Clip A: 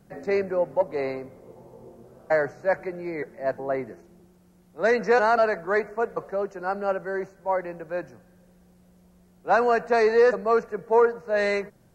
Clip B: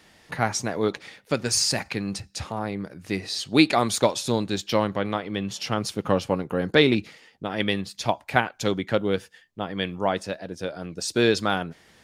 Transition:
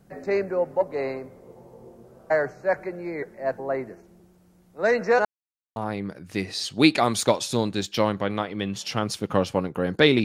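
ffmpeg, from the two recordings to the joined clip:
-filter_complex "[0:a]apad=whole_dur=10.24,atrim=end=10.24,asplit=2[a][b];[a]atrim=end=5.25,asetpts=PTS-STARTPTS,afade=t=out:st=5.246:d=0.004:c=hsin[c];[b]atrim=start=5.25:end=5.76,asetpts=PTS-STARTPTS,volume=0[d];[1:a]atrim=start=2.51:end=6.99,asetpts=PTS-STARTPTS,afade=t=in:d=0.004:c=hsin[e];[c][d][e]concat=n=3:v=0:a=1"

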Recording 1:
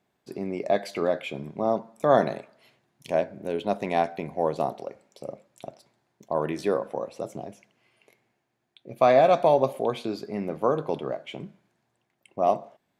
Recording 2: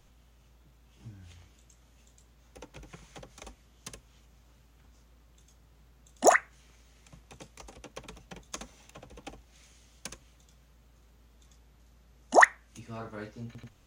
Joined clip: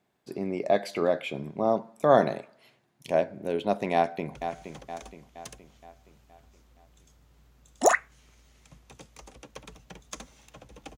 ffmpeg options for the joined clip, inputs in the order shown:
-filter_complex "[0:a]apad=whole_dur=10.97,atrim=end=10.97,atrim=end=4.352[a];[1:a]atrim=start=2.758:end=9.38[b];[a][b]acrossfade=d=0.004:c1=hsin:c2=hsin,asplit=2[c][d];[d]afade=t=in:st=3.94:d=0.01,afade=t=out:st=4.35:d=0.01,aecho=0:1:470|940|1410|1880|2350|2820:0.354813|0.177407|0.0887033|0.0443517|0.0221758|0.0110879[e];[c][e]amix=inputs=2:normalize=0"

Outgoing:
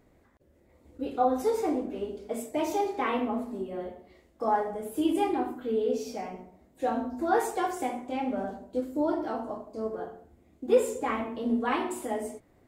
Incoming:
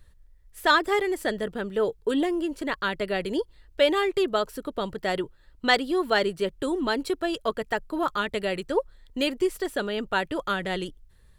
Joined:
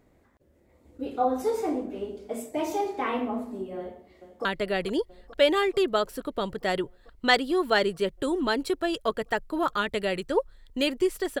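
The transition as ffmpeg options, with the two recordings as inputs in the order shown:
-filter_complex "[0:a]apad=whole_dur=11.4,atrim=end=11.4,atrim=end=4.452[a];[1:a]atrim=start=2.848:end=9.8[b];[a][b]acrossfade=d=0.004:c1=hsin:c2=hsin,asplit=2[c][d];[d]afade=t=in:st=3.77:d=0.01,afade=t=out:st=4.45:d=0.01,aecho=0:1:440|880|1320|1760|2200|2640|3080|3520|3960|4400|4840|5280:0.211349|0.169079|0.135263|0.108211|0.0865685|0.0692548|0.0554038|0.0443231|0.0354585|0.0283668|0.0226934|0.0181547[e];[c][e]amix=inputs=2:normalize=0"

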